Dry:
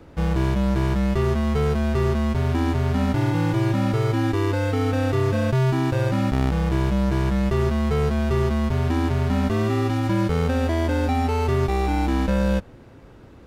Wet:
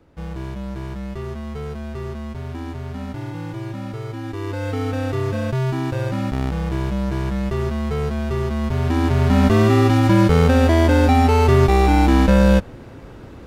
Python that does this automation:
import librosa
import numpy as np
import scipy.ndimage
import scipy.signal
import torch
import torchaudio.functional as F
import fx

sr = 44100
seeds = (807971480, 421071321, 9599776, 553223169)

y = fx.gain(x, sr, db=fx.line((4.22, -8.5), (4.71, -1.5), (8.47, -1.5), (9.47, 7.5)))